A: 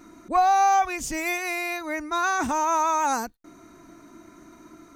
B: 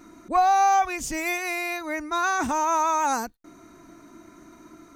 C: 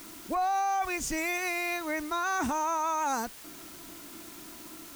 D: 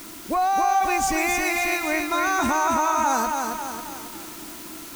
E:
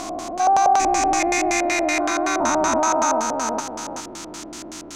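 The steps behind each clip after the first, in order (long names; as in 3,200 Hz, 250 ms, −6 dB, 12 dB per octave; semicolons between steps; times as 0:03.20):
no processing that can be heard
in parallel at −7 dB: bit-depth reduction 6 bits, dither triangular; on the sum: brickwall limiter −16.5 dBFS, peak gain reduction 8.5 dB; level −5 dB
feedback echo at a low word length 272 ms, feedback 55%, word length 9 bits, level −4 dB; level +6.5 dB
spectrum averaged block by block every 400 ms; auto-filter low-pass square 5.3 Hz 610–6,600 Hz; level +4.5 dB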